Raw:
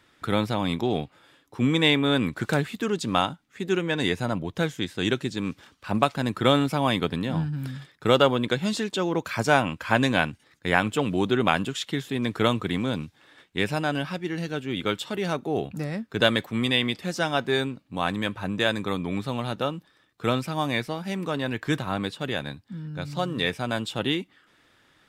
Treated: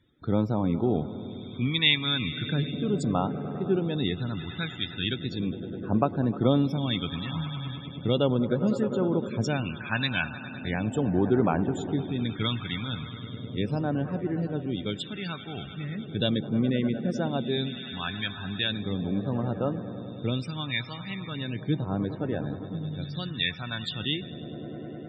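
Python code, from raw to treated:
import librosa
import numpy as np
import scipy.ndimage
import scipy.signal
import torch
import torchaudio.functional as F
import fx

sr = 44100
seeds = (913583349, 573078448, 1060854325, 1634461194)

y = fx.echo_swell(x, sr, ms=102, loudest=5, wet_db=-17.0)
y = fx.spec_topn(y, sr, count=64)
y = fx.phaser_stages(y, sr, stages=2, low_hz=460.0, high_hz=2900.0, hz=0.37, feedback_pct=50)
y = y * librosa.db_to_amplitude(-1.0)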